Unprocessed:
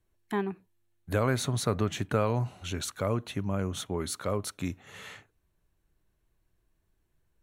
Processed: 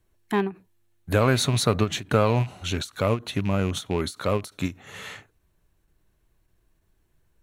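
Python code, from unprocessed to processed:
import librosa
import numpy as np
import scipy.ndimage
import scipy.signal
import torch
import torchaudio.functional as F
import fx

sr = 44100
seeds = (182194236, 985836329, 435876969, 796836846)

y = fx.rattle_buzz(x, sr, strikes_db=-31.0, level_db=-33.0)
y = fx.dynamic_eq(y, sr, hz=4000.0, q=2.9, threshold_db=-51.0, ratio=4.0, max_db=5)
y = fx.end_taper(y, sr, db_per_s=270.0)
y = y * 10.0 ** (6.5 / 20.0)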